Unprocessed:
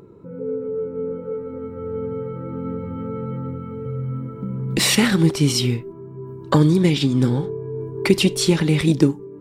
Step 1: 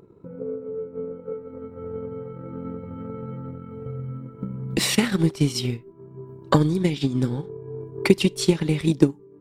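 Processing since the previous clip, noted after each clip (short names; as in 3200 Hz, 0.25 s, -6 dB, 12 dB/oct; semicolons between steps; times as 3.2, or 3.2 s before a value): transient shaper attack +7 dB, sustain -6 dB; gain -6.5 dB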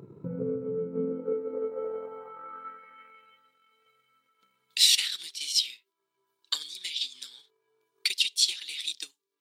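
dynamic EQ 750 Hz, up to -5 dB, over -38 dBFS, Q 1.1; high-pass sweep 130 Hz -> 3700 Hz, 0.62–3.48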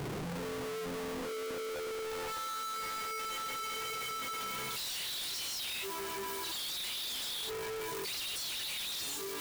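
infinite clipping; gain -5.5 dB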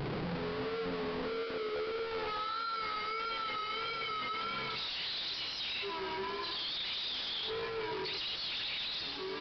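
vibrato 1.6 Hz 61 cents; echo 0.124 s -9.5 dB; downsampling 11025 Hz; gain +1.5 dB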